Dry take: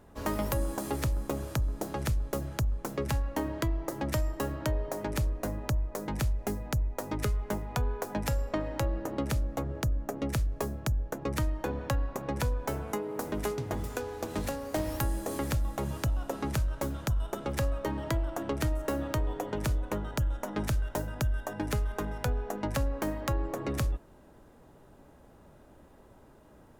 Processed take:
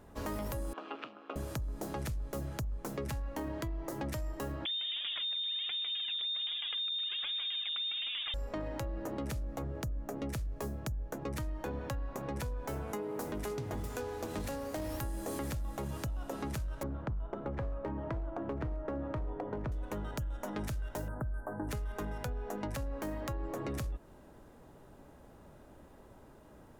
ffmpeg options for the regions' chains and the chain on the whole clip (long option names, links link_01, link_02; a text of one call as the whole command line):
ffmpeg -i in.wav -filter_complex "[0:a]asettb=1/sr,asplit=3[link_01][link_02][link_03];[link_01]atrim=end=0.734[link_04];[link_02]atrim=start=0.73:end=1.36,asetpts=PTS-STARTPTS,afade=type=in:duration=0.004:curve=qsin,afade=type=out:start_time=0.626:duration=0.004:curve=qsin,tremolo=f=160:d=0.621,highpass=frequency=340:width=0.5412,highpass=frequency=340:width=1.3066,equalizer=frequency=380:width_type=q:width=4:gain=-8,equalizer=frequency=550:width_type=q:width=4:gain=-7,equalizer=frequency=870:width_type=q:width=4:gain=-5,equalizer=frequency=1300:width_type=q:width=4:gain=6,equalizer=frequency=1900:width_type=q:width=4:gain=-8,equalizer=frequency=2800:width_type=q:width=4:gain=8,lowpass=frequency=3100:width=0.5412,lowpass=frequency=3100:width=1.3066[link_05];[link_03]atrim=start=1.356[link_06];[link_04][link_05]acrossfade=duration=0.004:curve1=hsin:curve2=qsin[link_07];[link_07][link_06]acrossfade=duration=0.004:curve1=qsin:curve2=hsin,asettb=1/sr,asplit=3[link_08][link_09][link_10];[link_08]atrim=end=4.654[link_11];[link_09]atrim=start=4.65:end=8.34,asetpts=PTS-STARTPTS,afade=type=in:duration=0.004:curve=qsin,afade=type=out:start_time=3.686:duration=0.004:curve=qsin,aecho=1:1:153|306|459|612:0.631|0.221|0.0773|0.0271,atrim=end_sample=162729,aphaser=in_gain=1:out_gain=1:delay=4.2:decay=0.75:speed=1.3:type=triangular,lowpass=frequency=3100:width_type=q:width=0.5098,lowpass=frequency=3100:width_type=q:width=0.6013,lowpass=frequency=3100:width_type=q:width=0.9,lowpass=frequency=3100:width_type=q:width=2.563,afreqshift=-3700[link_12];[link_10]atrim=start=8.336[link_13];[link_11][link_12]acrossfade=duration=0.004:curve1=hsin:curve2=qsin[link_14];[link_14][link_13]acrossfade=duration=0.004:curve1=qsin:curve2=hsin,asettb=1/sr,asplit=3[link_15][link_16][link_17];[link_15]atrim=end=16.834[link_18];[link_16]atrim=start=16.83:end=19.72,asetpts=PTS-STARTPTS,afade=type=in:duration=0.004:curve=qsin,afade=type=out:start_time=2.886:duration=0.004:curve=qsin,lowpass=1300,asoftclip=type=hard:threshold=-25dB[link_19];[link_17]atrim=start=19.716[link_20];[link_18][link_19]acrossfade=duration=0.004:curve1=hsin:curve2=qsin[link_21];[link_21][link_20]acrossfade=duration=0.004:curve1=qsin:curve2=hsin,asettb=1/sr,asplit=3[link_22][link_23][link_24];[link_22]atrim=end=21.084[link_25];[link_23]atrim=start=21.08:end=21.69,asetpts=PTS-STARTPTS,afade=type=in:duration=0.004:curve=qsin,afade=type=out:start_time=0.606:duration=0.004:curve=qsin,acrossover=split=4700[link_26][link_27];[link_27]acompressor=threshold=-57dB:ratio=4:attack=1:release=60[link_28];[link_26][link_28]amix=inputs=2:normalize=0,asuperstop=centerf=3800:order=12:qfactor=0.56[link_29];[link_24]atrim=start=21.686[link_30];[link_25][link_29]acrossfade=duration=0.004:curve1=hsin:curve2=qsin[link_31];[link_31][link_30]acrossfade=duration=0.004:curve1=qsin:curve2=hsin,alimiter=level_in=2.5dB:limit=-24dB:level=0:latency=1:release=12,volume=-2.5dB,acompressor=threshold=-34dB:ratio=6" out.wav